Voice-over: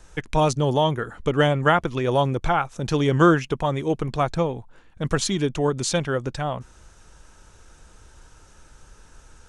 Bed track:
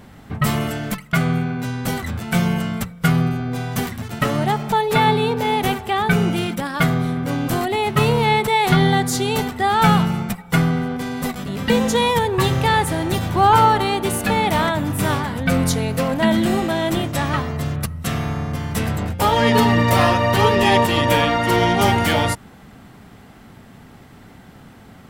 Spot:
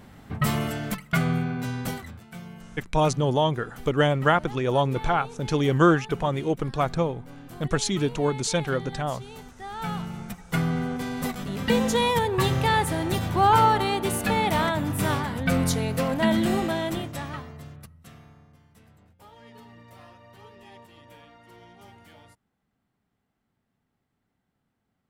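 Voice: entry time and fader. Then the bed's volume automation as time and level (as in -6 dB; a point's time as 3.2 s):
2.60 s, -2.0 dB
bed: 1.81 s -5 dB
2.32 s -22.5 dB
9.46 s -22.5 dB
10.85 s -5 dB
16.67 s -5 dB
18.74 s -34 dB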